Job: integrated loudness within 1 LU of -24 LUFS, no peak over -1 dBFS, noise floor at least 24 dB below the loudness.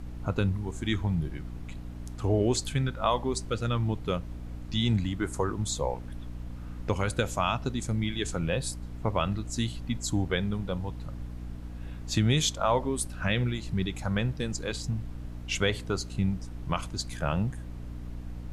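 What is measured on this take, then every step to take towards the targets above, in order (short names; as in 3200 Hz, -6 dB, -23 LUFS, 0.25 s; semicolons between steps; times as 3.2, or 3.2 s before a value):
hum 60 Hz; harmonics up to 300 Hz; hum level -37 dBFS; noise floor -40 dBFS; noise floor target -54 dBFS; loudness -30.0 LUFS; peak -12.5 dBFS; loudness target -24.0 LUFS
-> notches 60/120/180/240/300 Hz; noise print and reduce 14 dB; gain +6 dB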